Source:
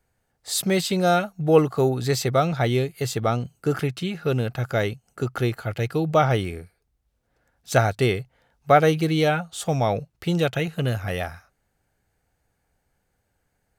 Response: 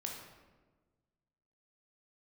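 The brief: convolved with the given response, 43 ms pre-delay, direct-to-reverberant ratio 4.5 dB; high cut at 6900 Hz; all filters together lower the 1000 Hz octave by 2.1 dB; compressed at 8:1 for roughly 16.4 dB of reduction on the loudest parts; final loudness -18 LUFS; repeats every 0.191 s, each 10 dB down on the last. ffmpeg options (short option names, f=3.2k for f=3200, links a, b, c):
-filter_complex "[0:a]lowpass=6.9k,equalizer=f=1k:t=o:g=-3.5,acompressor=threshold=-29dB:ratio=8,aecho=1:1:191|382|573|764:0.316|0.101|0.0324|0.0104,asplit=2[a][b];[1:a]atrim=start_sample=2205,adelay=43[c];[b][c]afir=irnorm=-1:irlink=0,volume=-4dB[d];[a][d]amix=inputs=2:normalize=0,volume=14.5dB"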